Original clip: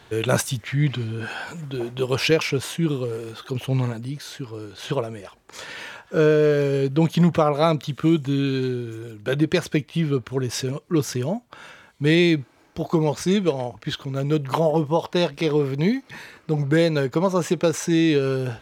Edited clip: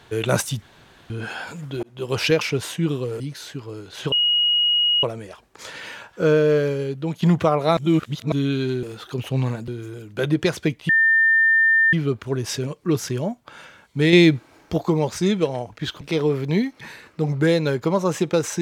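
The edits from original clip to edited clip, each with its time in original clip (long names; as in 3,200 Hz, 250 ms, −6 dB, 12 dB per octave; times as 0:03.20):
0:00.62–0:01.10: fill with room tone
0:01.83–0:02.18: fade in
0:03.20–0:04.05: move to 0:08.77
0:04.97: insert tone 2,890 Hz −15.5 dBFS 0.91 s
0:06.51–0:07.16: fade out quadratic, to −8 dB
0:07.71–0:08.26: reverse
0:09.98: insert tone 1,800 Hz −13 dBFS 1.04 s
0:12.18–0:12.83: clip gain +5 dB
0:14.06–0:15.31: remove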